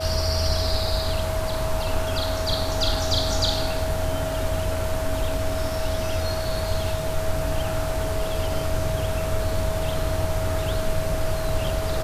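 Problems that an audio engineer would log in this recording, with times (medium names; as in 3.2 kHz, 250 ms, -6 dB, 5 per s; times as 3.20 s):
whine 640 Hz -28 dBFS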